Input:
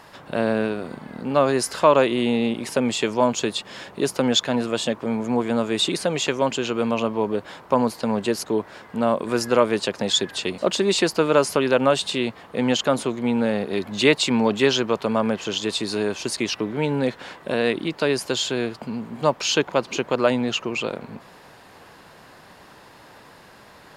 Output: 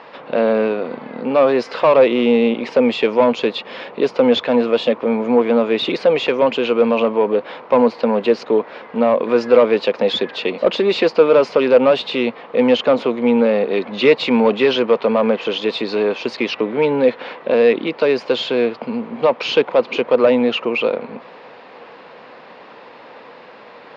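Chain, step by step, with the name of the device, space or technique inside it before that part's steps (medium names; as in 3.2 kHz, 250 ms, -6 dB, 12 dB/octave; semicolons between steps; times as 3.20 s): overdrive pedal into a guitar cabinet (overdrive pedal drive 18 dB, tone 1.8 kHz, clips at -3 dBFS; cabinet simulation 77–4600 Hz, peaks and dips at 95 Hz -9 dB, 240 Hz +6 dB, 490 Hz +9 dB, 1.6 kHz -4 dB, 2.4 kHz +4 dB); trim -2.5 dB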